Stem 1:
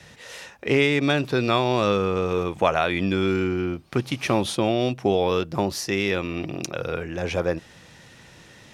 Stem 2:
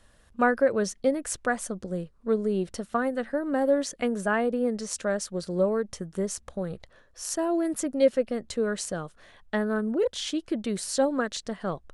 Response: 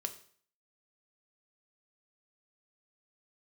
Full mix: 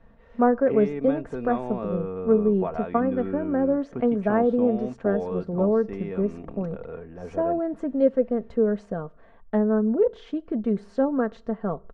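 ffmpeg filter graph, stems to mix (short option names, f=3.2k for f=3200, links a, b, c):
-filter_complex "[0:a]volume=-9.5dB[a];[1:a]volume=1dB,asplit=2[b][c];[c]volume=-11.5dB[d];[2:a]atrim=start_sample=2205[e];[d][e]afir=irnorm=-1:irlink=0[f];[a][b][f]amix=inputs=3:normalize=0,lowpass=1k,aecho=1:1:4.4:0.47"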